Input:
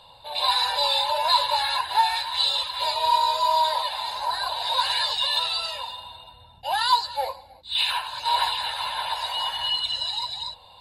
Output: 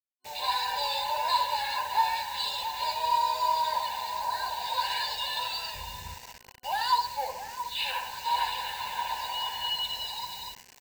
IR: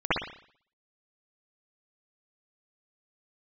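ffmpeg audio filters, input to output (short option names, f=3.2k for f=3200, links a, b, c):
-filter_complex "[0:a]asplit=2[a][b];[b]adelay=673,lowpass=f=1k:p=1,volume=-8dB,asplit=2[c][d];[d]adelay=673,lowpass=f=1k:p=1,volume=0.48,asplit=2[e][f];[f]adelay=673,lowpass=f=1k:p=1,volume=0.48,asplit=2[g][h];[h]adelay=673,lowpass=f=1k:p=1,volume=0.48,asplit=2[i][j];[j]adelay=673,lowpass=f=1k:p=1,volume=0.48,asplit=2[k][l];[l]adelay=673,lowpass=f=1k:p=1,volume=0.48[m];[a][c][e][g][i][k][m]amix=inputs=7:normalize=0,asplit=2[n][o];[1:a]atrim=start_sample=2205[p];[o][p]afir=irnorm=-1:irlink=0,volume=-23dB[q];[n][q]amix=inputs=2:normalize=0,asplit=3[r][s][t];[r]afade=t=out:st=5.74:d=0.02[u];[s]asubboost=boost=8.5:cutoff=210,afade=t=in:st=5.74:d=0.02,afade=t=out:st=6.15:d=0.02[v];[t]afade=t=in:st=6.15:d=0.02[w];[u][v][w]amix=inputs=3:normalize=0,acrusher=bits=5:mix=0:aa=0.000001,superequalizer=6b=0.501:8b=0.631:10b=0.282:13b=0.501:16b=0.447,volume=-5.5dB"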